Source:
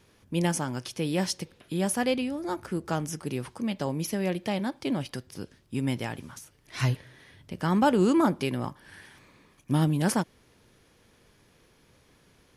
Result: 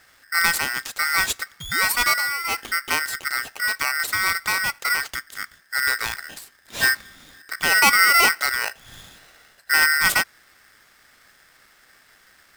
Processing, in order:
sound drawn into the spectrogram rise, 0:01.60–0:02.09, 1,500–3,600 Hz −40 dBFS
ring modulator with a square carrier 1,700 Hz
level +6 dB

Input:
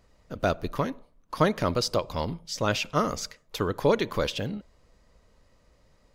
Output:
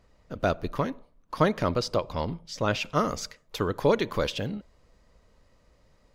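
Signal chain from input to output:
high-shelf EQ 6,000 Hz −6.5 dB, from 0:01.69 −11.5 dB, from 0:02.81 −3 dB

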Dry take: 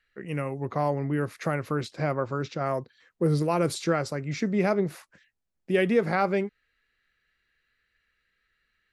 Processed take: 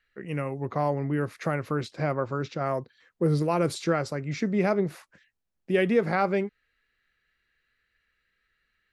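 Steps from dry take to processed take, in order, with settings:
high-shelf EQ 6,300 Hz −4.5 dB

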